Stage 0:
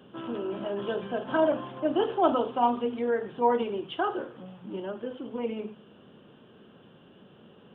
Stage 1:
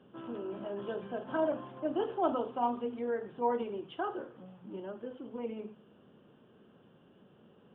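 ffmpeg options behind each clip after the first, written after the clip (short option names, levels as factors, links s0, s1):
-af "lowpass=f=2100:p=1,volume=0.473"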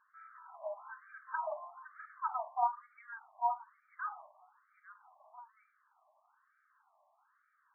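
-af "afftfilt=real='re*between(b*sr/1024,820*pow(1700/820,0.5+0.5*sin(2*PI*1.1*pts/sr))/1.41,820*pow(1700/820,0.5+0.5*sin(2*PI*1.1*pts/sr))*1.41)':imag='im*between(b*sr/1024,820*pow(1700/820,0.5+0.5*sin(2*PI*1.1*pts/sr))/1.41,820*pow(1700/820,0.5+0.5*sin(2*PI*1.1*pts/sr))*1.41)':win_size=1024:overlap=0.75,volume=1.19"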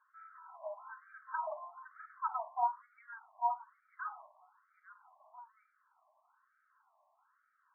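-af "highpass=470,equalizer=f=540:t=q:w=4:g=-4,equalizer=f=810:t=q:w=4:g=-4,equalizer=f=1200:t=q:w=4:g=5,equalizer=f=1700:t=q:w=4:g=-5,lowpass=f=2000:w=0.5412,lowpass=f=2000:w=1.3066,bandreject=f=1200:w=6.3,volume=1.19"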